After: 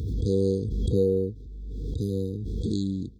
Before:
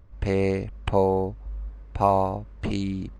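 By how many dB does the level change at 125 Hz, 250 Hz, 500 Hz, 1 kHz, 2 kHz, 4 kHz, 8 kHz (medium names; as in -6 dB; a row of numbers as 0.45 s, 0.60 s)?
+1.5 dB, +0.5 dB, -2.5 dB, under -40 dB, under -35 dB, -2.5 dB, no reading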